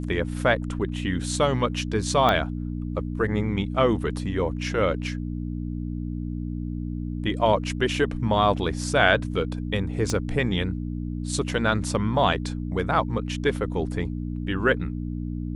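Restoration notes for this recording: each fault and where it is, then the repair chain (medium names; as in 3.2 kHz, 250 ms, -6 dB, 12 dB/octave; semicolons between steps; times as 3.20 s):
hum 60 Hz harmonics 5 -30 dBFS
2.29 s: pop -9 dBFS
10.10 s: pop -14 dBFS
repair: de-click; de-hum 60 Hz, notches 5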